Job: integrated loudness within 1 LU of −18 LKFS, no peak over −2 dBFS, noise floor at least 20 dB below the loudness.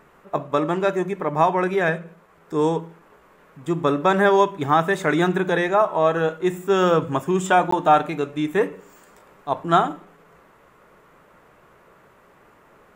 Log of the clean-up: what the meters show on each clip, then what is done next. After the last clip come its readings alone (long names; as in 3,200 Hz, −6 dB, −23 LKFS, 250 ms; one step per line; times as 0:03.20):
number of dropouts 1; longest dropout 14 ms; integrated loudness −21.0 LKFS; sample peak −5.5 dBFS; target loudness −18.0 LKFS
→ repair the gap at 0:07.71, 14 ms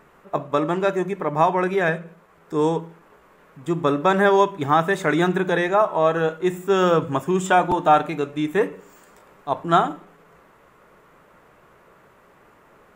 number of dropouts 0; integrated loudness −21.0 LKFS; sample peak −5.5 dBFS; target loudness −18.0 LKFS
→ level +3 dB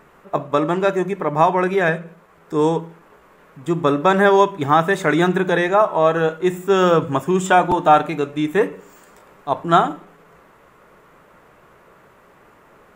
integrated loudness −18.0 LKFS; sample peak −2.5 dBFS; background noise floor −51 dBFS